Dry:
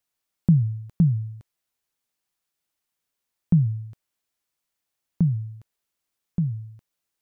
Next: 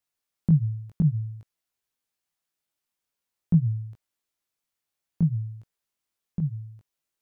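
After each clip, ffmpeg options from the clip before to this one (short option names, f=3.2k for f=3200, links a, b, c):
-af "flanger=delay=18:depth=2.1:speed=0.54"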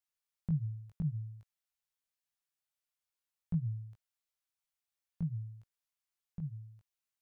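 -af "equalizer=f=280:t=o:w=1.7:g=-12,volume=-7dB"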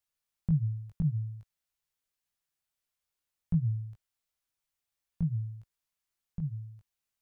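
-af "lowshelf=f=110:g=7.5,volume=3dB"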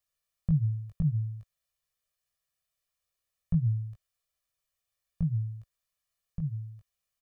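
-af "aecho=1:1:1.7:0.68"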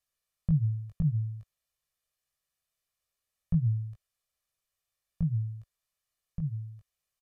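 -af "aresample=32000,aresample=44100"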